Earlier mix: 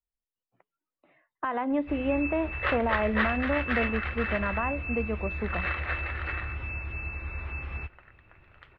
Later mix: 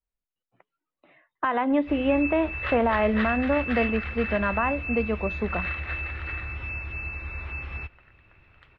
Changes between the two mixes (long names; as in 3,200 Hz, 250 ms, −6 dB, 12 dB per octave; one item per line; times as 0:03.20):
speech +4.5 dB
second sound −6.0 dB
master: add high-shelf EQ 3,500 Hz +9.5 dB